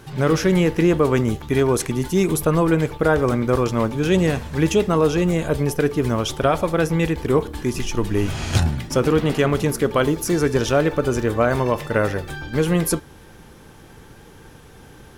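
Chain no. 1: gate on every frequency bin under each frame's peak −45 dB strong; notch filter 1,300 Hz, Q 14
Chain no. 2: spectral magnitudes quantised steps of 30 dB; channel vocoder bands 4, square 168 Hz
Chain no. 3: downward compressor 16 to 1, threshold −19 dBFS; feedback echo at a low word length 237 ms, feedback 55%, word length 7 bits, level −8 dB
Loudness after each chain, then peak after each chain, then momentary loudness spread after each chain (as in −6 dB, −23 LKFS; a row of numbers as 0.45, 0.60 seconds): −20.0, −22.0, −24.5 LKFS; −6.5, −7.0, −9.5 dBFS; 5, 6, 3 LU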